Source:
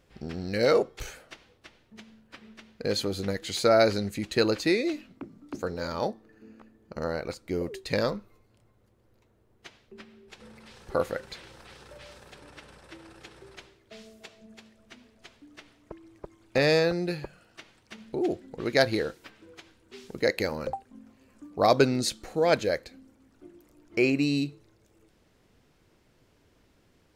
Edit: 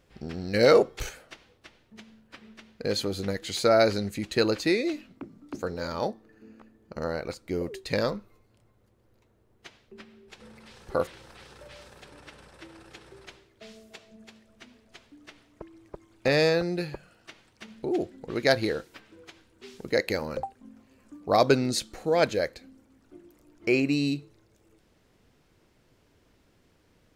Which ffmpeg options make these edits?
ffmpeg -i in.wav -filter_complex "[0:a]asplit=4[link_01][link_02][link_03][link_04];[link_01]atrim=end=0.542[link_05];[link_02]atrim=start=0.538:end=1.092,asetpts=PTS-STARTPTS,volume=4dB[link_06];[link_03]atrim=start=1.088:end=11.072[link_07];[link_04]atrim=start=11.368[link_08];[link_05][link_06]acrossfade=duration=0.004:curve1=hsin:curve2=hsin[link_09];[link_09][link_07]acrossfade=duration=0.004:curve1=hsin:curve2=hsin[link_10];[link_10][link_08]acrossfade=duration=0.004:curve1=hsin:curve2=hsin" out.wav

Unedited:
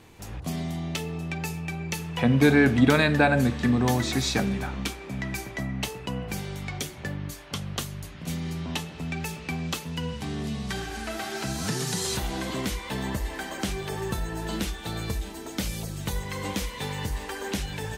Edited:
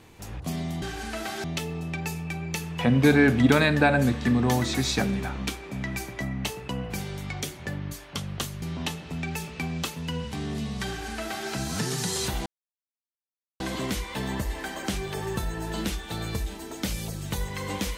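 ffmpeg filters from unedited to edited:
ffmpeg -i in.wav -filter_complex "[0:a]asplit=5[link_01][link_02][link_03][link_04][link_05];[link_01]atrim=end=0.822[link_06];[link_02]atrim=start=10.758:end=11.382[link_07];[link_03]atrim=start=0.818:end=8.002[link_08];[link_04]atrim=start=8.508:end=12.35,asetpts=PTS-STARTPTS,afade=type=out:start_time=3.838:duration=0.004:curve=hsin,apad=pad_dur=1.14[link_09];[link_05]atrim=start=12.35,asetpts=PTS-STARTPTS,afade=type=in:duration=0.004:curve=hsin[link_10];[link_06][link_07]acrossfade=duration=0.004:curve1=hsin:curve2=hsin[link_11];[link_11][link_08]acrossfade=duration=0.004:curve1=hsin:curve2=hsin[link_12];[link_09][link_10]concat=n=2:v=0:a=1[link_13];[link_12][link_13]acrossfade=duration=0.004:curve1=hsin:curve2=hsin" out.wav

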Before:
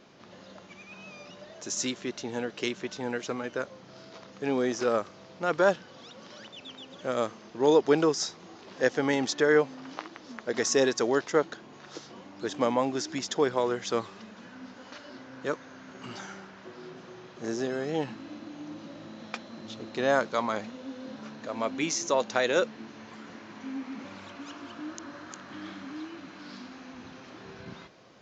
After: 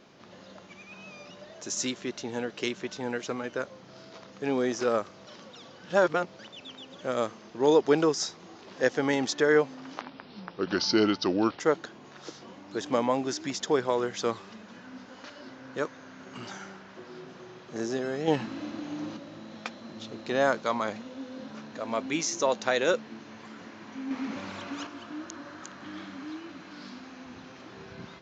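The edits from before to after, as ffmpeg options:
ffmpeg -i in.wav -filter_complex "[0:a]asplit=9[link_01][link_02][link_03][link_04][link_05][link_06][link_07][link_08][link_09];[link_01]atrim=end=5.272[link_10];[link_02]atrim=start=5.268:end=6.392,asetpts=PTS-STARTPTS,areverse[link_11];[link_03]atrim=start=6.388:end=10.014[link_12];[link_04]atrim=start=10.01:end=11.28,asetpts=PTS-STARTPTS,asetrate=35280,aresample=44100[link_13];[link_05]atrim=start=11.276:end=17.962[link_14];[link_06]atrim=start=17.958:end=18.852,asetpts=PTS-STARTPTS,volume=5.5dB[link_15];[link_07]atrim=start=18.848:end=23.792[link_16];[link_08]atrim=start=23.788:end=24.552,asetpts=PTS-STARTPTS,volume=5.5dB[link_17];[link_09]atrim=start=24.548[link_18];[link_10][link_11]acrossfade=duration=0.004:curve1=hsin:curve2=hsin[link_19];[link_19][link_12]acrossfade=duration=0.004:curve1=hsin:curve2=hsin[link_20];[link_20][link_13]acrossfade=duration=0.004:curve1=hsin:curve2=hsin[link_21];[link_21][link_14]acrossfade=duration=0.004:curve1=hsin:curve2=hsin[link_22];[link_22][link_15]acrossfade=duration=0.004:curve1=hsin:curve2=hsin[link_23];[link_23][link_16]acrossfade=duration=0.004:curve1=hsin:curve2=hsin[link_24];[link_24][link_17]acrossfade=duration=0.004:curve1=hsin:curve2=hsin[link_25];[link_25][link_18]acrossfade=duration=0.004:curve1=hsin:curve2=hsin" out.wav

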